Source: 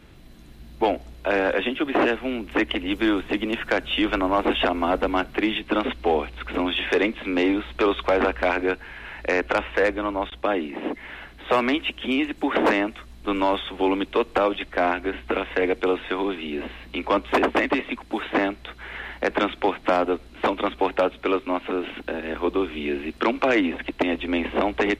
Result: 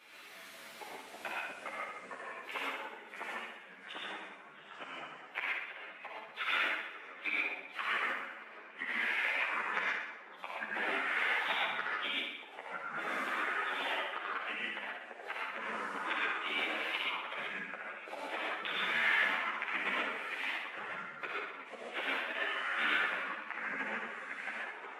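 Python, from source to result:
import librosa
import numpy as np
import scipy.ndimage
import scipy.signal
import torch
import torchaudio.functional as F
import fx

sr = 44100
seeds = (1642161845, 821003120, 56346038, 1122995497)

p1 = fx.gate_flip(x, sr, shuts_db=-20.0, range_db=-36)
p2 = scipy.signal.sosfilt(scipy.signal.butter(2, 770.0, 'highpass', fs=sr, output='sos'), p1)
p3 = fx.peak_eq(p2, sr, hz=2300.0, db=5.5, octaves=0.24)
p4 = p3 + fx.room_flutter(p3, sr, wall_m=10.4, rt60_s=0.85, dry=0)
p5 = fx.rev_gated(p4, sr, seeds[0], gate_ms=150, shape='rising', drr_db=-4.0)
p6 = fx.echo_pitch(p5, sr, ms=172, semitones=-3, count=3, db_per_echo=-3.0)
y = fx.ensemble(p6, sr)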